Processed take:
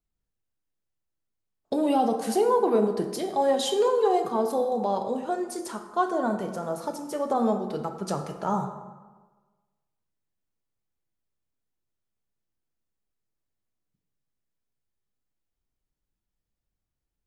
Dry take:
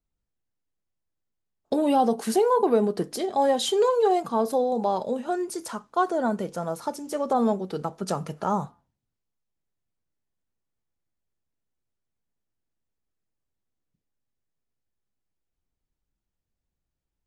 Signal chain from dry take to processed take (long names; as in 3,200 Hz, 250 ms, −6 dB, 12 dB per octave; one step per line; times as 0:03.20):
dense smooth reverb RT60 1.3 s, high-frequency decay 0.55×, DRR 5.5 dB
level −2.5 dB